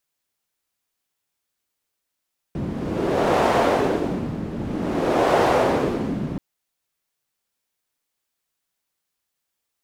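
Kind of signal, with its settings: wind-like swept noise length 3.83 s, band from 190 Hz, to 630 Hz, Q 1.5, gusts 2, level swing 10.5 dB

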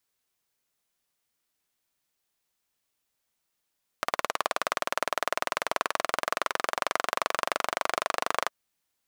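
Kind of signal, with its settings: single-cylinder engine model, changing speed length 4.47 s, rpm 2200, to 3000, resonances 670/1100 Hz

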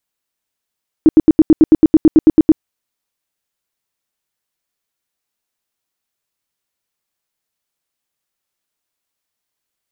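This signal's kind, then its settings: tone bursts 315 Hz, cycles 9, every 0.11 s, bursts 14, -2 dBFS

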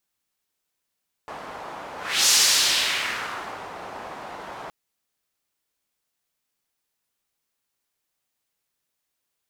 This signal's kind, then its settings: whoosh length 3.42 s, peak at 1.01 s, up 0.34 s, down 1.50 s, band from 860 Hz, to 5.7 kHz, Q 1.4, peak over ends 20 dB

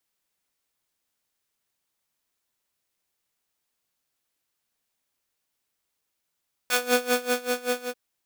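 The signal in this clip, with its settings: synth patch with tremolo B4, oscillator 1 square, sub -0.5 dB, noise -6 dB, filter highpass, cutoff 370 Hz, Q 0.75, filter decay 0.14 s, filter sustain 5%, attack 2.1 ms, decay 0.79 s, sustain -7 dB, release 0.10 s, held 1.14 s, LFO 5.2 Hz, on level 20.5 dB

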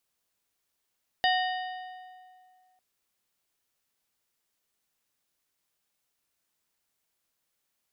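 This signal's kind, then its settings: metal hit plate, lowest mode 739 Hz, modes 5, decay 2.14 s, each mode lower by 3 dB, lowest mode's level -22.5 dB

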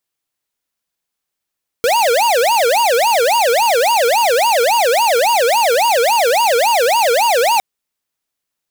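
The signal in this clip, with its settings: siren wail 459–954 Hz 3.6 per s square -13 dBFS 5.76 s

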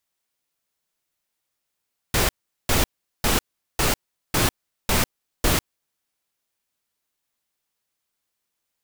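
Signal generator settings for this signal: noise bursts pink, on 0.15 s, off 0.40 s, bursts 7, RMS -19.5 dBFS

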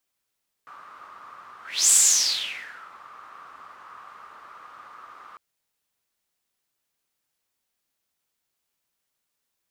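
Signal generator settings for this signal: whoosh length 4.70 s, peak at 1.24 s, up 0.31 s, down 1.07 s, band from 1.2 kHz, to 7.8 kHz, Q 7.5, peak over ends 30 dB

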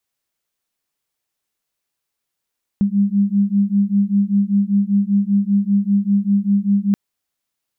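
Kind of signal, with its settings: beating tones 198 Hz, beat 5.1 Hz, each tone -16.5 dBFS 4.13 s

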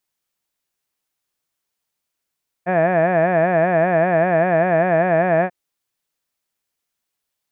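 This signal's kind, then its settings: formant-synthesis vowel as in had, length 2.84 s, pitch 172 Hz, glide 0 st, vibrato 5.1 Hz, vibrato depth 1.35 st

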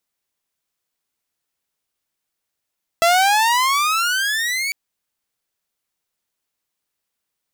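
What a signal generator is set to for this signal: gliding synth tone saw, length 1.70 s, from 662 Hz, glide +21.5 st, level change -8.5 dB, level -9 dB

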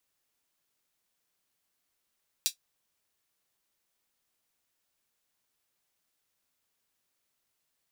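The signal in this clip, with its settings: closed hi-hat, high-pass 3.9 kHz, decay 0.11 s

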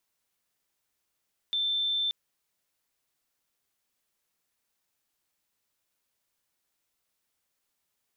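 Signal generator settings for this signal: tone sine 3.55 kHz -25.5 dBFS 0.58 s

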